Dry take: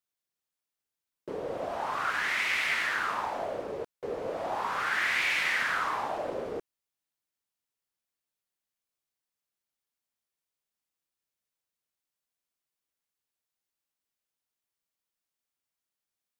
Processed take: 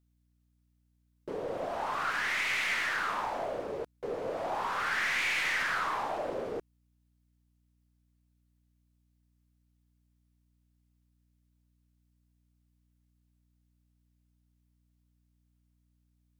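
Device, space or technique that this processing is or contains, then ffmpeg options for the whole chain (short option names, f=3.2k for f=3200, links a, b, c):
valve amplifier with mains hum: -af "aeval=exprs='(tanh(15.8*val(0)+0.15)-tanh(0.15))/15.8':c=same,aeval=exprs='val(0)+0.000316*(sin(2*PI*60*n/s)+sin(2*PI*2*60*n/s)/2+sin(2*PI*3*60*n/s)/3+sin(2*PI*4*60*n/s)/4+sin(2*PI*5*60*n/s)/5)':c=same"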